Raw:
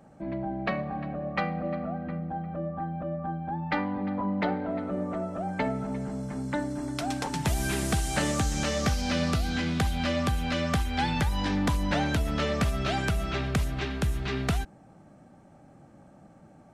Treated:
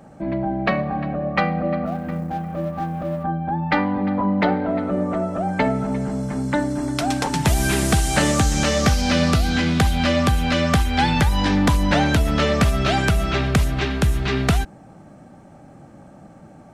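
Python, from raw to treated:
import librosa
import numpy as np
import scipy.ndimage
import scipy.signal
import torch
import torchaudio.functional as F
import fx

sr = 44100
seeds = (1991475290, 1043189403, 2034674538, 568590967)

y = fx.law_mismatch(x, sr, coded='A', at=(1.85, 3.23), fade=0.02)
y = y * 10.0 ** (9.0 / 20.0)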